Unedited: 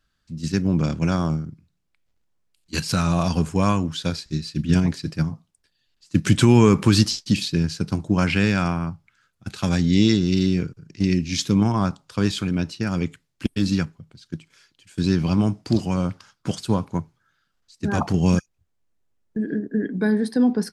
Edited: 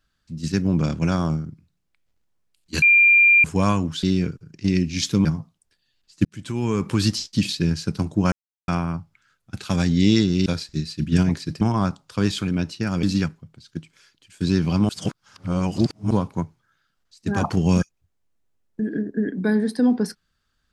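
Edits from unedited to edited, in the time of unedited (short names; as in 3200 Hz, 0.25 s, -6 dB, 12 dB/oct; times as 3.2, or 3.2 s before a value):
2.82–3.44 bleep 2390 Hz -10.5 dBFS
4.03–5.18 swap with 10.39–11.61
6.18–7.44 fade in
8.25–8.61 mute
13.03–13.6 cut
15.46–16.68 reverse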